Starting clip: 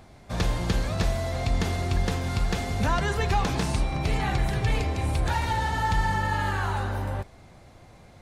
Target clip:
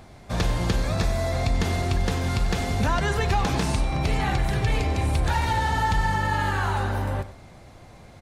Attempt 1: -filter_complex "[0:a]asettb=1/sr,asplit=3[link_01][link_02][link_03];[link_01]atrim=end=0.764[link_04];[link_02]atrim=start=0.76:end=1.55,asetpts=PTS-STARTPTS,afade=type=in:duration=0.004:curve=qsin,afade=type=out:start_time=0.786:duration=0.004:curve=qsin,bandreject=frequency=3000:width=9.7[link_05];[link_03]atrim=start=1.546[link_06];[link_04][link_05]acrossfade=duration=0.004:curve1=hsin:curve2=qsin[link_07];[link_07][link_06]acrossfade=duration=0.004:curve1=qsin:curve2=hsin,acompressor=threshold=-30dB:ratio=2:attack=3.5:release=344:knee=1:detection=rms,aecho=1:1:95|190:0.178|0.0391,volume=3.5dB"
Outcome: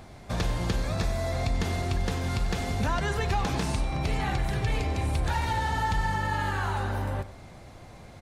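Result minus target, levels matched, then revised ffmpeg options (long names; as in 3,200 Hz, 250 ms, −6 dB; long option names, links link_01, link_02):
downward compressor: peak gain reduction +4 dB
-filter_complex "[0:a]asettb=1/sr,asplit=3[link_01][link_02][link_03];[link_01]atrim=end=0.764[link_04];[link_02]atrim=start=0.76:end=1.55,asetpts=PTS-STARTPTS,afade=type=in:duration=0.004:curve=qsin,afade=type=out:start_time=0.786:duration=0.004:curve=qsin,bandreject=frequency=3000:width=9.7[link_05];[link_03]atrim=start=1.546[link_06];[link_04][link_05]acrossfade=duration=0.004:curve1=hsin:curve2=qsin[link_07];[link_07][link_06]acrossfade=duration=0.004:curve1=qsin:curve2=hsin,acompressor=threshold=-21.5dB:ratio=2:attack=3.5:release=344:knee=1:detection=rms,aecho=1:1:95|190:0.178|0.0391,volume=3.5dB"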